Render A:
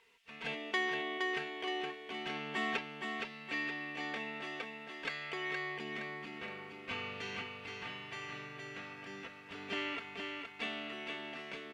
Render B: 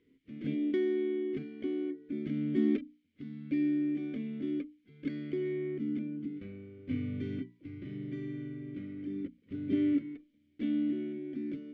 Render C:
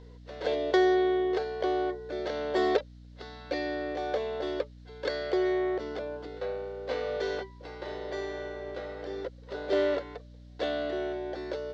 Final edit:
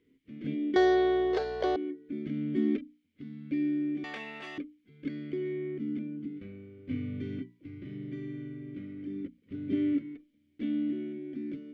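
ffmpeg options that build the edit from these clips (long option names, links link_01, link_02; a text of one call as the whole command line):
ffmpeg -i take0.wav -i take1.wav -i take2.wav -filter_complex "[1:a]asplit=3[link_01][link_02][link_03];[link_01]atrim=end=0.762[link_04];[2:a]atrim=start=0.758:end=1.762[link_05];[link_02]atrim=start=1.758:end=4.042[link_06];[0:a]atrim=start=4.038:end=4.582[link_07];[link_03]atrim=start=4.578[link_08];[link_04][link_05]acrossfade=duration=0.004:curve1=hsin:curve2=hsin[link_09];[link_09][link_06]acrossfade=duration=0.004:curve1=hsin:curve2=hsin[link_10];[link_10][link_07]acrossfade=duration=0.004:curve1=hsin:curve2=hsin[link_11];[link_11][link_08]acrossfade=duration=0.004:curve1=hsin:curve2=hsin" out.wav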